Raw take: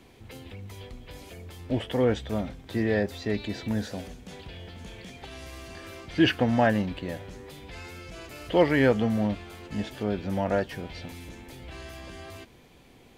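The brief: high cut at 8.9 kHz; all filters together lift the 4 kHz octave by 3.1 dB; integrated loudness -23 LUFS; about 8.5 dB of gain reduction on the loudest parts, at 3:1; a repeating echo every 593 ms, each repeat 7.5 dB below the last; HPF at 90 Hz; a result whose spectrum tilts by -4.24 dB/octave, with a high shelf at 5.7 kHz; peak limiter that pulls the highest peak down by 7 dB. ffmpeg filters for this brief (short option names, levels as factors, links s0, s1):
-af "highpass=90,lowpass=8900,equalizer=f=4000:t=o:g=3,highshelf=f=5700:g=5,acompressor=threshold=0.0447:ratio=3,alimiter=limit=0.0668:level=0:latency=1,aecho=1:1:593|1186|1779|2372|2965:0.422|0.177|0.0744|0.0312|0.0131,volume=4.73"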